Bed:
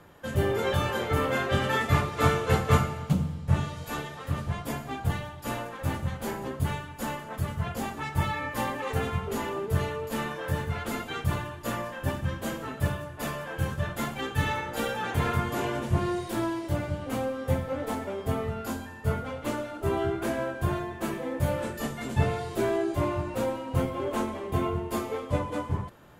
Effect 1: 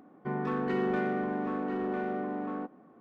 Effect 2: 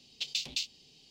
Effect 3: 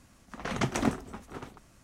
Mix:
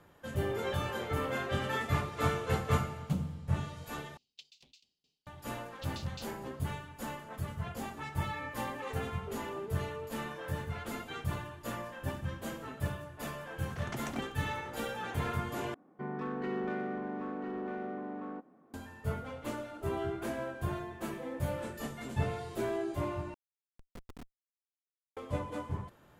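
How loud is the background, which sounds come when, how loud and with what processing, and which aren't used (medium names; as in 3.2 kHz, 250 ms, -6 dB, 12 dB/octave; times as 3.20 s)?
bed -7.5 dB
4.17 s: replace with 2 -14 dB + sawtooth tremolo in dB decaying 4.6 Hz, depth 22 dB
5.61 s: add 2 -15 dB
13.31 s: add 3 -12 dB
15.74 s: replace with 1 -6 dB
23.34 s: replace with 3 -11 dB + Schmitt trigger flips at -22 dBFS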